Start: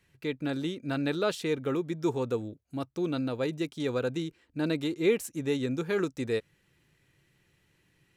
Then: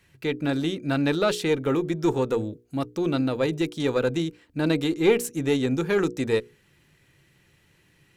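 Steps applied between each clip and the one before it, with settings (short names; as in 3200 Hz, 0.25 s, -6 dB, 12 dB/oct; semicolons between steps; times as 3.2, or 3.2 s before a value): one diode to ground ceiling -17 dBFS; notches 60/120/180/240/300/360/420/480 Hz; gain +7.5 dB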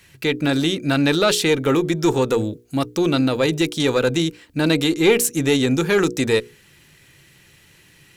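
high shelf 2200 Hz +8 dB; in parallel at -0.5 dB: limiter -19 dBFS, peak gain reduction 11 dB; on the sum: gain +1 dB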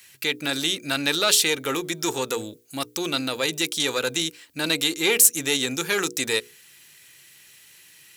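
tilt +3.5 dB/oct; gain -5 dB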